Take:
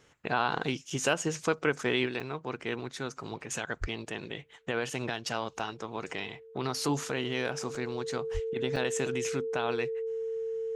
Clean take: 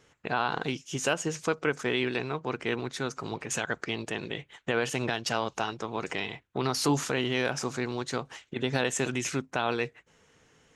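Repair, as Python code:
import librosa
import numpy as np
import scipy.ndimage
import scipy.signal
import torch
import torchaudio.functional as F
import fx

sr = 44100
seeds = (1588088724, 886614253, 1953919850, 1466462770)

y = fx.notch(x, sr, hz=450.0, q=30.0)
y = fx.highpass(y, sr, hz=140.0, slope=24, at=(3.8, 3.92), fade=0.02)
y = fx.highpass(y, sr, hz=140.0, slope=24, at=(8.33, 8.45), fade=0.02)
y = fx.fix_interpolate(y, sr, at_s=(0.9, 2.2, 5.59, 7.75, 8.76), length_ms=3.9)
y = fx.fix_level(y, sr, at_s=2.06, step_db=4.0)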